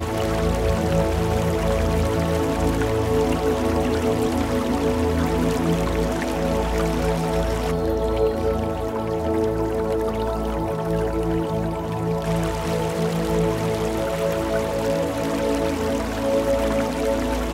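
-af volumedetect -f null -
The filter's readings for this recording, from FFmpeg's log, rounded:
mean_volume: -21.8 dB
max_volume: -8.7 dB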